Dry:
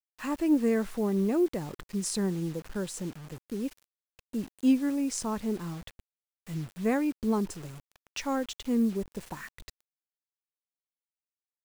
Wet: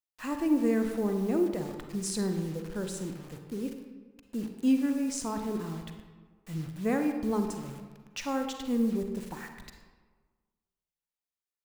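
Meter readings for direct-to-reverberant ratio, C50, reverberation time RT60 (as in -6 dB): 5.0 dB, 6.0 dB, 1.5 s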